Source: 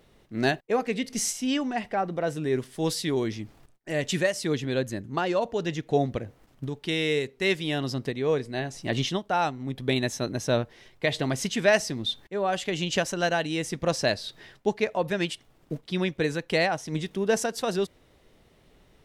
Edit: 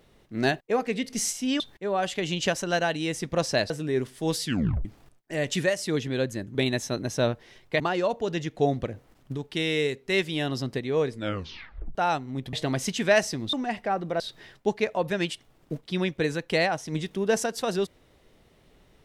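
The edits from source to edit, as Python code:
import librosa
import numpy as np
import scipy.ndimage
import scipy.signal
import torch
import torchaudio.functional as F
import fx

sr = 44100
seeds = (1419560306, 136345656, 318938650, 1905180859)

y = fx.edit(x, sr, fx.swap(start_s=1.6, length_s=0.67, other_s=12.1, other_length_s=2.1),
    fx.tape_stop(start_s=3.01, length_s=0.41),
    fx.tape_stop(start_s=8.45, length_s=0.82),
    fx.move(start_s=9.85, length_s=1.25, to_s=5.12), tone=tone)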